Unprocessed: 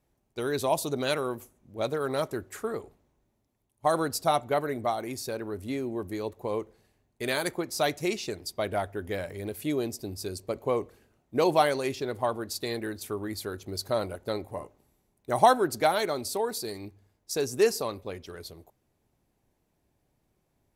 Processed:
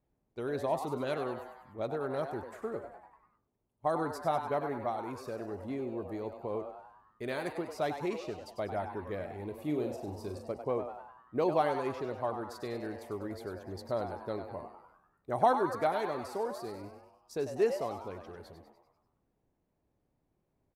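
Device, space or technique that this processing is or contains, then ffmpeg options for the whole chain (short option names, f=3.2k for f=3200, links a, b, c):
through cloth: -filter_complex "[0:a]asettb=1/sr,asplit=3[a][b][c];[a]atrim=end=9.544[d];[b]atrim=start=9.54:end=10.52,asetpts=PTS-STARTPTS,afade=t=in:d=0.004:c=qsin,afade=t=out:st=0.976:d=0.004:c=qsin,asplit=2[e][f];[f]adelay=40,volume=-6.5dB[g];[e][g]amix=inputs=2:normalize=0,atrim=end_sample=43218[h];[c]atrim=start=10.516[i];[d][h]acrossfade=d=0.004:c1=hsin:c2=qsin[j];[j][i]acrossfade=d=0.004:c1=qsin:c2=hsin,highshelf=f=2.8k:g=-15.5,asplit=7[k][l][m][n][o][p][q];[l]adelay=98,afreqshift=130,volume=-9dB[r];[m]adelay=196,afreqshift=260,volume=-14.5dB[s];[n]adelay=294,afreqshift=390,volume=-20dB[t];[o]adelay=392,afreqshift=520,volume=-25.5dB[u];[p]adelay=490,afreqshift=650,volume=-31.1dB[v];[q]adelay=588,afreqshift=780,volume=-36.6dB[w];[k][r][s][t][u][v][w]amix=inputs=7:normalize=0,volume=-5dB"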